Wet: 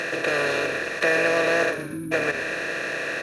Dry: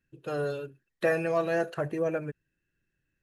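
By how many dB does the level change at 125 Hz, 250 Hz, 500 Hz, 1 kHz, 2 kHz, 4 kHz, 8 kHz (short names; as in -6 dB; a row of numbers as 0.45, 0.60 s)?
-0.5 dB, +4.0 dB, +5.0 dB, +7.5 dB, +15.5 dB, +18.5 dB, n/a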